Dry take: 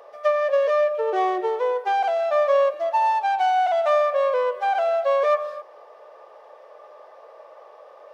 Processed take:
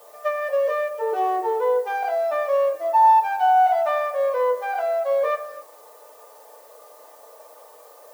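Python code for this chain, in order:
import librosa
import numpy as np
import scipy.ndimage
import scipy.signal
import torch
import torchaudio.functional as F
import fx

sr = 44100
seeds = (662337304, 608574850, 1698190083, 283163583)

y = fx.peak_eq(x, sr, hz=2800.0, db=-3.5, octaves=1.5)
y = fx.dmg_noise_colour(y, sr, seeds[0], colour='blue', level_db=-50.0)
y = fx.rev_fdn(y, sr, rt60_s=0.32, lf_ratio=1.0, hf_ratio=0.5, size_ms=20.0, drr_db=-2.5)
y = F.gain(torch.from_numpy(y), -6.0).numpy()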